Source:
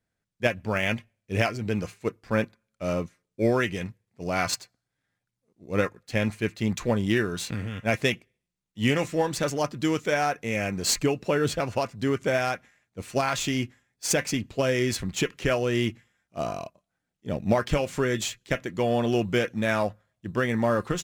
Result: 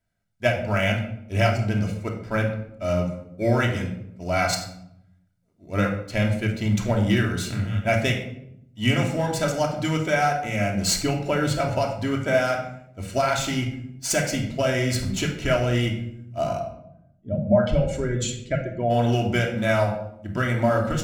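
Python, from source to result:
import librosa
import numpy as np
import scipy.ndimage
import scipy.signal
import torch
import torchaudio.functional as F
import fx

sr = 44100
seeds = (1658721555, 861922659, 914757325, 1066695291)

y = fx.spec_expand(x, sr, power=1.8, at=(16.58, 18.89), fade=0.02)
y = y + 0.42 * np.pad(y, (int(1.4 * sr / 1000.0), 0))[:len(y)]
y = fx.room_shoebox(y, sr, seeds[0], volume_m3=1900.0, walls='furnished', distance_m=2.9)
y = y * 10.0 ** (-1.0 / 20.0)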